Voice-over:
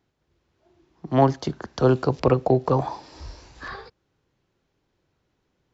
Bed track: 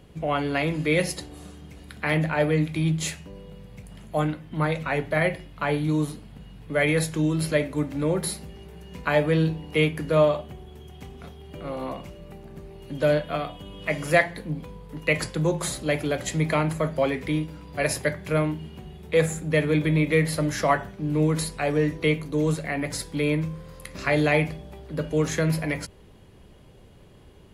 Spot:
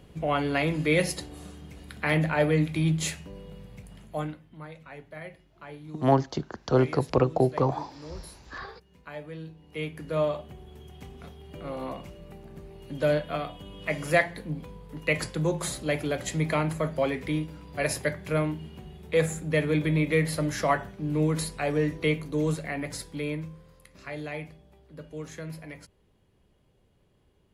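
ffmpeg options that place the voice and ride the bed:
-filter_complex "[0:a]adelay=4900,volume=0.668[s0];[1:a]volume=5.31,afade=t=out:st=3.6:d=1:silence=0.133352,afade=t=in:st=9.55:d=1.22:silence=0.16788,afade=t=out:st=22.44:d=1.46:silence=0.251189[s1];[s0][s1]amix=inputs=2:normalize=0"

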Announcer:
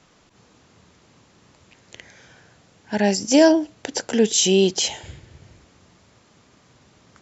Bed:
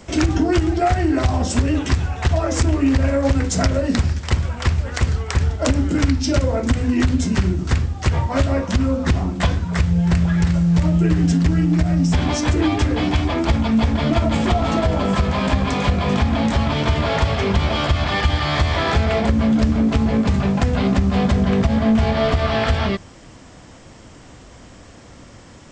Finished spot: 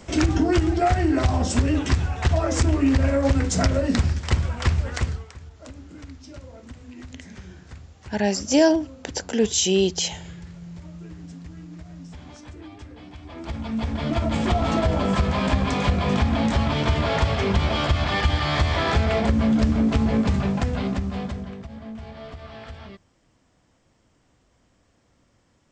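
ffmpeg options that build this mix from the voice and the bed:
-filter_complex "[0:a]adelay=5200,volume=0.708[s0];[1:a]volume=7.94,afade=t=out:st=4.87:d=0.46:silence=0.0891251,afade=t=in:st=13.21:d=1.45:silence=0.0944061,afade=t=out:st=20.2:d=1.38:silence=0.125893[s1];[s0][s1]amix=inputs=2:normalize=0"

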